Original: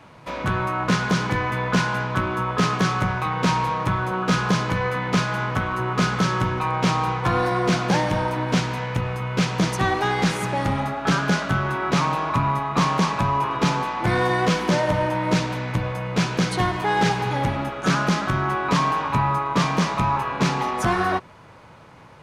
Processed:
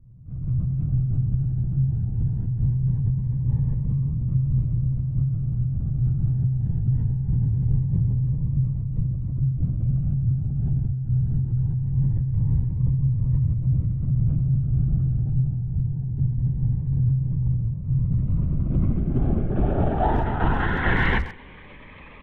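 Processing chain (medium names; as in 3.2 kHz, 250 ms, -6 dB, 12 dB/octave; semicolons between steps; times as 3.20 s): full-wave rectifier; low-pass sweep 130 Hz -> 2.6 kHz, 17.89–21.30 s; in parallel at -3.5 dB: hard clipper -24 dBFS, distortion -9 dB; on the sum: frequency shift -130 Hz; doubling 12 ms -11 dB; LPC vocoder at 8 kHz whisper; speakerphone echo 130 ms, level -13 dB; Shepard-style phaser rising 0.22 Hz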